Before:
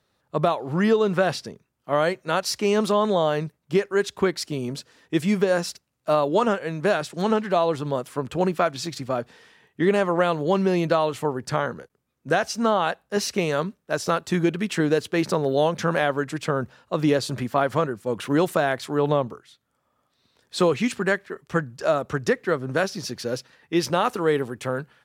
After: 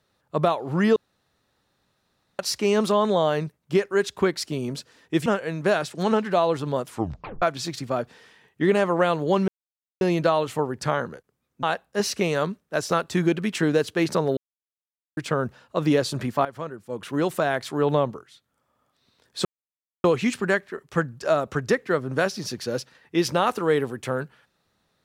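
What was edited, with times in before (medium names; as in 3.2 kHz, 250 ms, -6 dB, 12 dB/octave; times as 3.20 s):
0.96–2.39 s: room tone
5.26–6.45 s: delete
8.08 s: tape stop 0.53 s
10.67 s: insert silence 0.53 s
12.29–12.80 s: delete
15.54–16.34 s: mute
17.62–18.88 s: fade in, from -15 dB
20.62 s: insert silence 0.59 s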